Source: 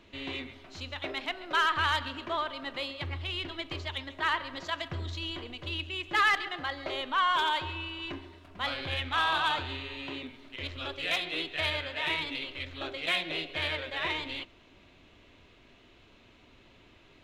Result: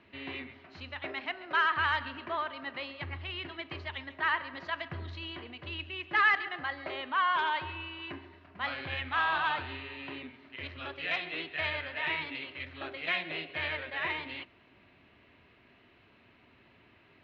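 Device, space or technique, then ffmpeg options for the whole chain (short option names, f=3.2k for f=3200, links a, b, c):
guitar cabinet: -af "highpass=86,equalizer=f=310:t=q:w=4:g=-3,equalizer=f=510:t=q:w=4:g=-4,equalizer=f=1.8k:t=q:w=4:g=4,equalizer=f=3.5k:t=q:w=4:g=-8,lowpass=f=4k:w=0.5412,lowpass=f=4k:w=1.3066,volume=-1.5dB"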